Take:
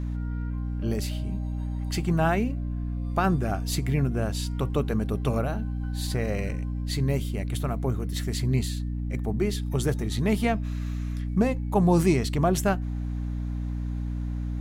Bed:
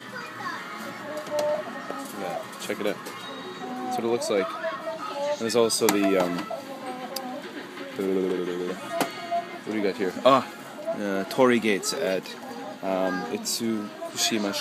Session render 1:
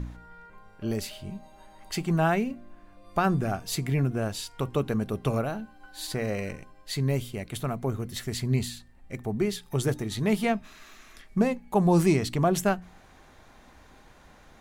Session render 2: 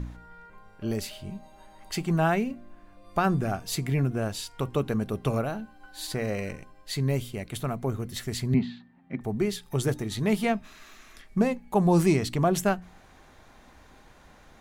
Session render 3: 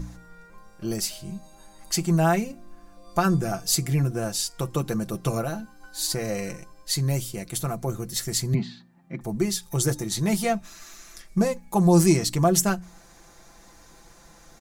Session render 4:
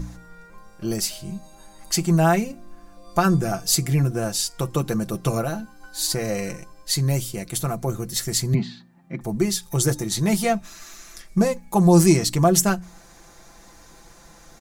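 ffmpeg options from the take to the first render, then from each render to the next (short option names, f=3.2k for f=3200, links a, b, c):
-af "bandreject=f=60:t=h:w=4,bandreject=f=120:t=h:w=4,bandreject=f=180:t=h:w=4,bandreject=f=240:t=h:w=4,bandreject=f=300:t=h:w=4"
-filter_complex "[0:a]asettb=1/sr,asplit=3[a][b][c];[a]atrim=end=8.544[d];[b]atrim=start=8.54:end=9.21,asetpts=PTS-STARTPTS,afade=t=in:d=0.004:c=qsin,afade=t=out:st=0.666:d=0.004:c=qsin,highpass=f=110:w=0.5412,highpass=f=110:w=1.3066,equalizer=f=110:t=q:w=4:g=-7,equalizer=f=170:t=q:w=4:g=10,equalizer=f=260:t=q:w=4:g=9,equalizer=f=490:t=q:w=4:g=-7,equalizer=f=840:t=q:w=4:g=4,equalizer=f=2.7k:t=q:w=4:g=-4,lowpass=f=3.2k:w=0.5412,lowpass=f=3.2k:w=1.3066[e];[c]atrim=start=9.206[f];[d][e]acrossfade=d=0.004:c1=hsin:c2=qsin[g];[g][f]acrossfade=d=0.004:c1=qsin:c2=hsin"
-af "highshelf=f=4.2k:t=q:w=1.5:g=8.5,aecho=1:1:5.9:0.65"
-af "volume=3dB"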